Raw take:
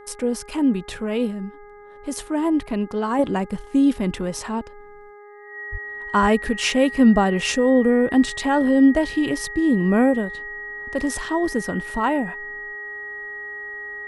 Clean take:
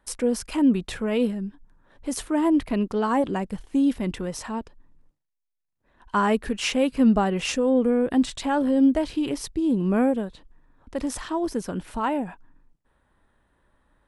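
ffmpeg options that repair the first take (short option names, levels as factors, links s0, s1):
-filter_complex "[0:a]bandreject=f=412.3:t=h:w=4,bandreject=f=824.6:t=h:w=4,bandreject=f=1236.9:t=h:w=4,bandreject=f=1649.2:t=h:w=4,bandreject=f=2061.5:t=h:w=4,bandreject=f=1900:w=30,asplit=3[s0][s1][s2];[s0]afade=t=out:st=5.71:d=0.02[s3];[s1]highpass=f=140:w=0.5412,highpass=f=140:w=1.3066,afade=t=in:st=5.71:d=0.02,afade=t=out:st=5.83:d=0.02[s4];[s2]afade=t=in:st=5.83:d=0.02[s5];[s3][s4][s5]amix=inputs=3:normalize=0,asplit=3[s6][s7][s8];[s6]afade=t=out:st=6.21:d=0.02[s9];[s7]highpass=f=140:w=0.5412,highpass=f=140:w=1.3066,afade=t=in:st=6.21:d=0.02,afade=t=out:st=6.33:d=0.02[s10];[s8]afade=t=in:st=6.33:d=0.02[s11];[s9][s10][s11]amix=inputs=3:normalize=0,asetnsamples=n=441:p=0,asendcmd='3.19 volume volume -4dB',volume=1"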